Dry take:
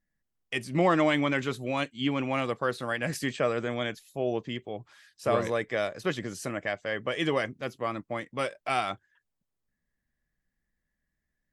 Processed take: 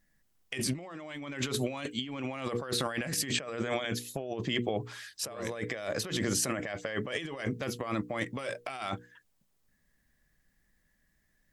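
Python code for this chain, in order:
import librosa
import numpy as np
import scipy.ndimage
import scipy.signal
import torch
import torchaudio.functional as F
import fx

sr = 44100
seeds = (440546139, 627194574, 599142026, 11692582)

y = fx.high_shelf(x, sr, hz=3700.0, db=4.0)
y = fx.hum_notches(y, sr, base_hz=60, count=8)
y = fx.over_compress(y, sr, threshold_db=-38.0, ratio=-1.0)
y = y * librosa.db_to_amplitude(2.5)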